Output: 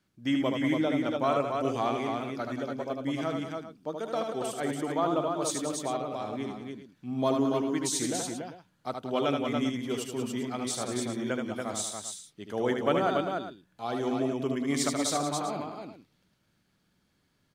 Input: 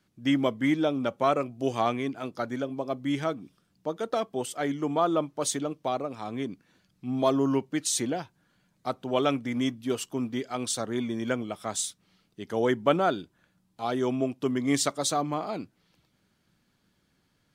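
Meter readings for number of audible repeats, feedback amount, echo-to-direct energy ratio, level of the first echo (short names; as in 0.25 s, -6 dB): 4, no steady repeat, -1.0 dB, -5.0 dB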